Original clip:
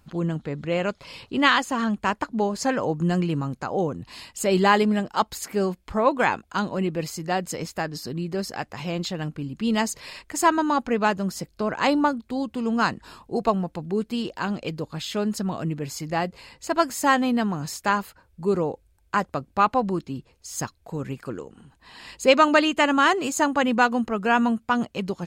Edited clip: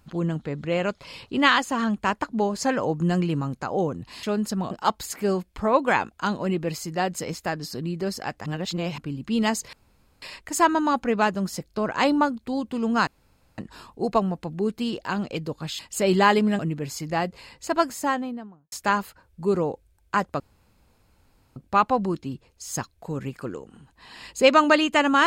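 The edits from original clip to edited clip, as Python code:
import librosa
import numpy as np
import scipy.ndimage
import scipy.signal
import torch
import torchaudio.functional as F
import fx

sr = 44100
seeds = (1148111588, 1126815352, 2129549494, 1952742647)

y = fx.studio_fade_out(x, sr, start_s=16.67, length_s=1.05)
y = fx.edit(y, sr, fx.swap(start_s=4.23, length_s=0.8, other_s=15.11, other_length_s=0.48),
    fx.reverse_span(start_s=8.78, length_s=0.52),
    fx.insert_room_tone(at_s=10.05, length_s=0.49),
    fx.insert_room_tone(at_s=12.9, length_s=0.51),
    fx.insert_room_tone(at_s=19.4, length_s=1.16), tone=tone)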